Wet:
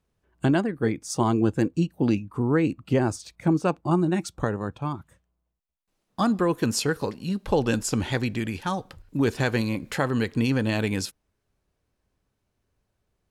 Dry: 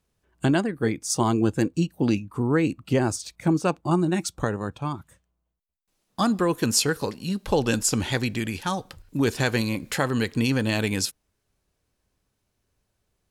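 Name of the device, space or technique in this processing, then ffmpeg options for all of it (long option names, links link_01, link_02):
behind a face mask: -af "highshelf=frequency=3300:gain=-8"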